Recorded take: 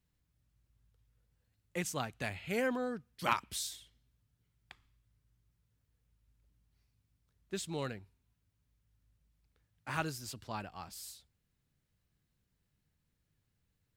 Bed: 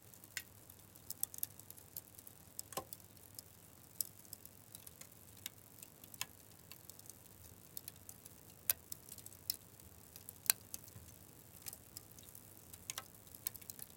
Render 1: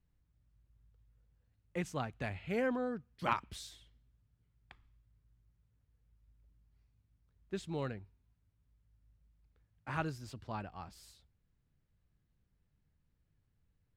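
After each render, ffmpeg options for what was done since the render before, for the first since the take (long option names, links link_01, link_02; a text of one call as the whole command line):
ffmpeg -i in.wav -af "lowpass=frequency=1800:poles=1,lowshelf=frequency=61:gain=9.5" out.wav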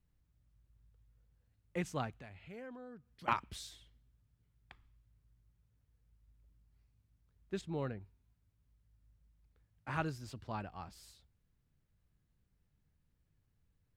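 ffmpeg -i in.wav -filter_complex "[0:a]asettb=1/sr,asplit=3[link_01][link_02][link_03];[link_01]atrim=end=2.184[link_04];[link_02]atrim=start=2.18:end=3.28,asetpts=PTS-STARTPTS,afade=type=in:duration=0.004:curve=qsin,afade=type=out:start_time=1.096:duration=0.004:curve=qsin,acompressor=threshold=-59dB:ratio=2:attack=3.2:release=140:knee=1:detection=peak[link_05];[link_03]atrim=start=3.276[link_06];[link_04][link_05]acrossfade=duration=0.004:curve1=hsin:curve2=qsin[link_07];[link_07][link_06]acrossfade=duration=0.004:curve1=qsin:curve2=hsin,asettb=1/sr,asplit=3[link_08][link_09][link_10];[link_08]atrim=end=7.614[link_11];[link_09]atrim=start=7.61:end=8.01,asetpts=PTS-STARTPTS,afade=type=in:duration=0.004:curve=qsin,afade=type=out:start_time=0.396:duration=0.004:curve=qsin,highshelf=frequency=2700:gain=-10[link_12];[link_10]atrim=start=8.006[link_13];[link_11][link_12]acrossfade=duration=0.004:curve1=hsin:curve2=qsin[link_14];[link_14][link_13]acrossfade=duration=0.004:curve1=qsin:curve2=hsin" out.wav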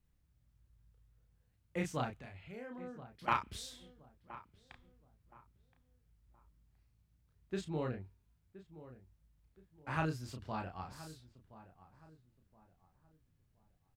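ffmpeg -i in.wav -filter_complex "[0:a]asplit=2[link_01][link_02];[link_02]adelay=32,volume=-4dB[link_03];[link_01][link_03]amix=inputs=2:normalize=0,asplit=2[link_04][link_05];[link_05]adelay=1021,lowpass=frequency=1400:poles=1,volume=-15.5dB,asplit=2[link_06][link_07];[link_07]adelay=1021,lowpass=frequency=1400:poles=1,volume=0.34,asplit=2[link_08][link_09];[link_09]adelay=1021,lowpass=frequency=1400:poles=1,volume=0.34[link_10];[link_04][link_06][link_08][link_10]amix=inputs=4:normalize=0" out.wav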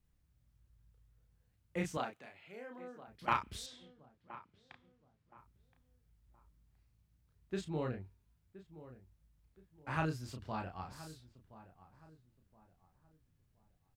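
ffmpeg -i in.wav -filter_complex "[0:a]asettb=1/sr,asplit=3[link_01][link_02][link_03];[link_01]atrim=end=1.974[link_04];[link_02]atrim=start=1.97:end=3.08,asetpts=PTS-STARTPTS,afade=type=in:duration=0.004:curve=qsin,afade=type=out:start_time=1.106:duration=0.004:curve=qsin,highpass=300[link_05];[link_03]atrim=start=3.076[link_06];[link_04][link_05]acrossfade=duration=0.004:curve1=hsin:curve2=qsin[link_07];[link_07][link_06]acrossfade=duration=0.004:curve1=qsin:curve2=hsin,asettb=1/sr,asplit=3[link_08][link_09][link_10];[link_08]atrim=end=3.664[link_11];[link_09]atrim=start=3.66:end=5.38,asetpts=PTS-STARTPTS,afade=type=in:duration=0.004:curve=qsin,afade=type=out:start_time=1.716:duration=0.004:curve=qsin,highpass=120,lowpass=5400[link_12];[link_10]atrim=start=5.376[link_13];[link_11][link_12]acrossfade=duration=0.004:curve1=hsin:curve2=qsin[link_14];[link_14][link_13]acrossfade=duration=0.004:curve1=qsin:curve2=hsin" out.wav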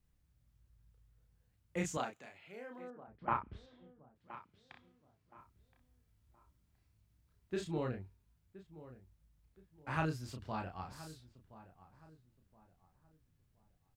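ffmpeg -i in.wav -filter_complex "[0:a]asettb=1/sr,asplit=3[link_01][link_02][link_03];[link_01]atrim=end=1.774[link_04];[link_02]atrim=start=1.77:end=2.38,asetpts=PTS-STARTPTS,afade=type=in:duration=0.004:curve=qsin,afade=type=out:start_time=0.606:duration=0.004:curve=qsin,equalizer=frequency=7000:width=4.2:gain=12[link_05];[link_03]atrim=start=2.376[link_06];[link_04][link_05]acrossfade=duration=0.004:curve1=hsin:curve2=qsin[link_07];[link_07][link_06]acrossfade=duration=0.004:curve1=qsin:curve2=hsin,asettb=1/sr,asplit=3[link_08][link_09][link_10];[link_08]atrim=end=2.904[link_11];[link_09]atrim=start=2.9:end=4.16,asetpts=PTS-STARTPTS,afade=type=in:duration=0.004:curve=qsin,afade=type=out:start_time=1.256:duration=0.004:curve=qsin,lowpass=1300[link_12];[link_10]atrim=start=4.156[link_13];[link_11][link_12]acrossfade=duration=0.004:curve1=hsin:curve2=qsin[link_14];[link_14][link_13]acrossfade=duration=0.004:curve1=qsin:curve2=hsin,asettb=1/sr,asplit=3[link_15][link_16][link_17];[link_15]atrim=end=4.724[link_18];[link_16]atrim=start=4.72:end=7.78,asetpts=PTS-STARTPTS,afade=type=in:duration=0.004:curve=qsin,afade=type=out:start_time=3.056:duration=0.004:curve=qsin,asplit=2[link_19][link_20];[link_20]adelay=29,volume=-3.5dB[link_21];[link_19][link_21]amix=inputs=2:normalize=0,atrim=end_sample=134946[link_22];[link_17]atrim=start=7.776[link_23];[link_18][link_22]acrossfade=duration=0.004:curve1=hsin:curve2=qsin[link_24];[link_24][link_23]acrossfade=duration=0.004:curve1=qsin:curve2=hsin" out.wav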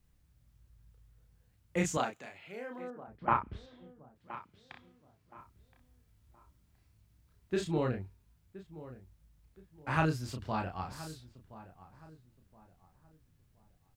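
ffmpeg -i in.wav -af "volume=6dB" out.wav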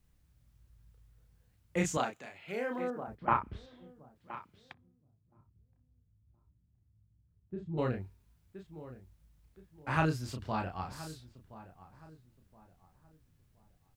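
ffmpeg -i in.wav -filter_complex "[0:a]asettb=1/sr,asplit=3[link_01][link_02][link_03];[link_01]atrim=end=2.484[link_04];[link_02]atrim=start=2.48:end=3.15,asetpts=PTS-STARTPTS,afade=type=in:duration=0.004:curve=qsin,afade=type=out:start_time=0.666:duration=0.004:curve=qsin,acontrast=90[link_05];[link_03]atrim=start=3.146[link_06];[link_04][link_05]acrossfade=duration=0.004:curve1=hsin:curve2=qsin[link_07];[link_07][link_06]acrossfade=duration=0.004:curve1=qsin:curve2=hsin,asplit=3[link_08][link_09][link_10];[link_08]afade=type=out:start_time=4.72:duration=0.02[link_11];[link_09]bandpass=frequency=110:width_type=q:width=1.1,afade=type=in:start_time=4.72:duration=0.02,afade=type=out:start_time=7.77:duration=0.02[link_12];[link_10]afade=type=in:start_time=7.77:duration=0.02[link_13];[link_11][link_12][link_13]amix=inputs=3:normalize=0" out.wav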